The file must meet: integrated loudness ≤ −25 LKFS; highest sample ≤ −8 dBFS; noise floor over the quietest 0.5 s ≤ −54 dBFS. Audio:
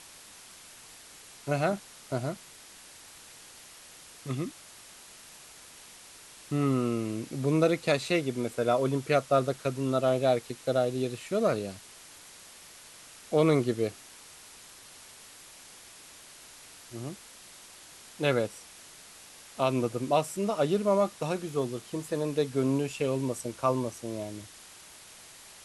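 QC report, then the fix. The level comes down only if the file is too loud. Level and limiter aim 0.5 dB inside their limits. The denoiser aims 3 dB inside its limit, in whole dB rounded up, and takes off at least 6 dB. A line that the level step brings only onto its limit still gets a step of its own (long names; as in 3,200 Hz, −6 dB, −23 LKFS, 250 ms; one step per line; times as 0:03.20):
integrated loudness −29.5 LKFS: in spec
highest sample −11.0 dBFS: in spec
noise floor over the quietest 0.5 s −51 dBFS: out of spec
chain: broadband denoise 6 dB, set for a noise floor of −51 dBFS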